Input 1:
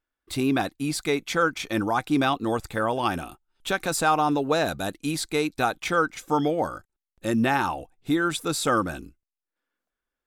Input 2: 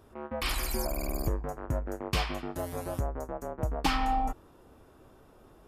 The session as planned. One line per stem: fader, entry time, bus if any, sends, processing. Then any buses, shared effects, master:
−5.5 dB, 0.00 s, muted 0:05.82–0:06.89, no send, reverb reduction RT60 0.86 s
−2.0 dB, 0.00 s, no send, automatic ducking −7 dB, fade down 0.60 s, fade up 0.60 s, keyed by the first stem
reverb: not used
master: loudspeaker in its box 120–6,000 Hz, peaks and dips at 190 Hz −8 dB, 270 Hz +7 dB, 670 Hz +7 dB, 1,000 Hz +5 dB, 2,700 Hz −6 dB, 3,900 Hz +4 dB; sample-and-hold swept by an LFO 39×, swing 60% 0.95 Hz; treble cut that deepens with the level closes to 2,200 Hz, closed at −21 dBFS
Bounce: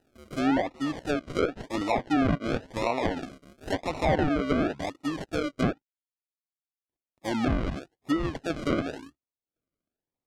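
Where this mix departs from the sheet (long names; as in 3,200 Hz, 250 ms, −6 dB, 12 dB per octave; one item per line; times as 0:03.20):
stem 1: missing reverb reduction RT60 0.86 s
stem 2 −2.0 dB → −11.5 dB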